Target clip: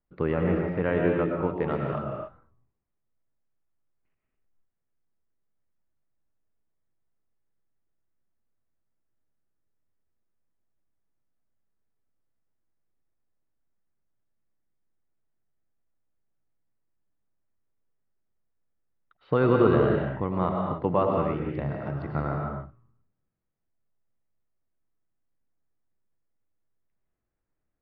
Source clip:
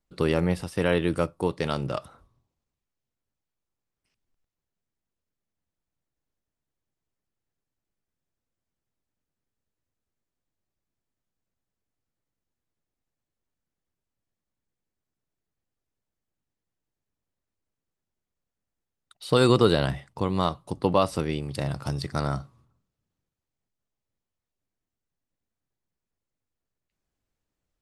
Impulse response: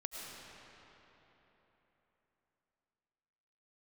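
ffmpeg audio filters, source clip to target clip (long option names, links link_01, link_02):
-filter_complex "[0:a]lowpass=frequency=2100:width=0.5412,lowpass=frequency=2100:width=1.3066[link_01];[1:a]atrim=start_sample=2205,afade=type=out:start_time=0.35:duration=0.01,atrim=end_sample=15876[link_02];[link_01][link_02]afir=irnorm=-1:irlink=0,volume=1.5dB"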